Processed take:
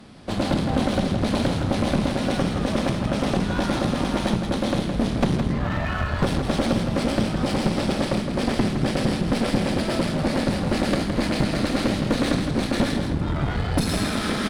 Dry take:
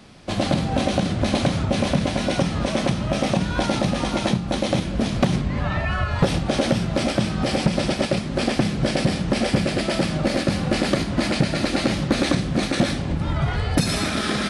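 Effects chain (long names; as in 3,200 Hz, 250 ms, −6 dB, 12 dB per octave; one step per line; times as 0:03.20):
graphic EQ with 15 bands 250 Hz +4 dB, 2,500 Hz −3 dB, 6,300 Hz −5 dB
asymmetric clip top −28 dBFS
on a send: single-tap delay 164 ms −7 dB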